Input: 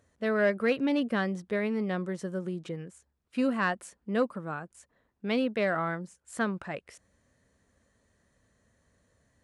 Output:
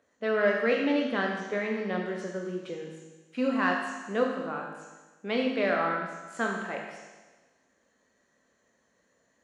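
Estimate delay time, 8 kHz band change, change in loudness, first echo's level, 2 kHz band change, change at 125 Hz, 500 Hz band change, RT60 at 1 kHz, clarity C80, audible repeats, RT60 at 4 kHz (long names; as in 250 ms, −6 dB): no echo audible, −1.0 dB, +1.5 dB, no echo audible, +3.0 dB, −4.5 dB, +2.0 dB, 1.3 s, 5.0 dB, no echo audible, 1.3 s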